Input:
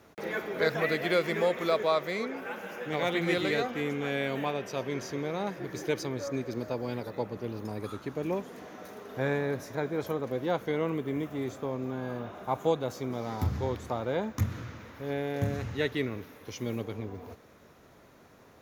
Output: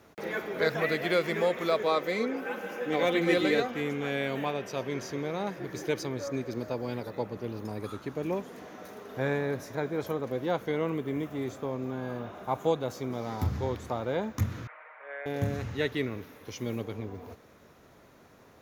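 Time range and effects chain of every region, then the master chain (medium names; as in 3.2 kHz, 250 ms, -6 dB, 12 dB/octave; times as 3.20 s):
1.86–3.60 s: peaking EQ 370 Hz +5.5 dB 0.75 oct + comb 3.9 ms, depth 48%
14.67–15.26 s: elliptic band-pass 600–2300 Hz, stop band 50 dB + comb 6.5 ms, depth 80%
whole clip: none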